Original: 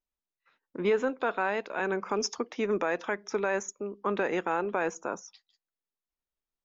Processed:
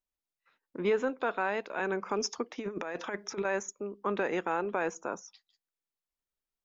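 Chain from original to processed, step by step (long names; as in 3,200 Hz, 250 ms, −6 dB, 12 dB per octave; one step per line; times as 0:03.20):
0:02.58–0:03.45: compressor whose output falls as the input rises −32 dBFS, ratio −0.5
level −2 dB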